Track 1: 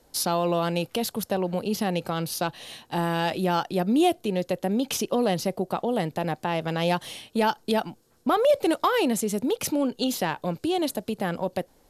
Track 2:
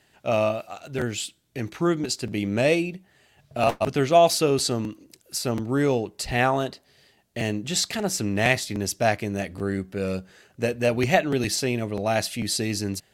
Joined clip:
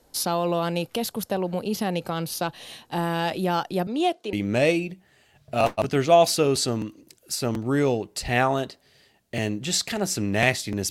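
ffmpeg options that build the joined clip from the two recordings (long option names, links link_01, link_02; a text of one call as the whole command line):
ffmpeg -i cue0.wav -i cue1.wav -filter_complex "[0:a]asettb=1/sr,asplit=3[link_01][link_02][link_03];[link_01]atrim=end=3.874[link_04];[link_02]atrim=start=3.87:end=4.33,asetpts=PTS-STARTPTS,afade=type=in:duration=0.004:curve=qsin,afade=type=out:start_time=0.456:duration=0.004:curve=qsin,highpass=370,lowpass=6500[link_05];[link_03]atrim=start=4.326[link_06];[link_04][link_05]acrossfade=duration=0.004:curve1=hsin:curve2=qsin[link_07];[link_07][link_06]acrossfade=duration=0.004:curve1=qsin:curve2=hsin,apad=whole_dur=10.9,atrim=end=10.9,atrim=end=4.332[link_08];[1:a]atrim=start=2.358:end=8.93[link_09];[link_08][link_09]acrossfade=duration=0.004:curve1=hsin:curve2=hsin" out.wav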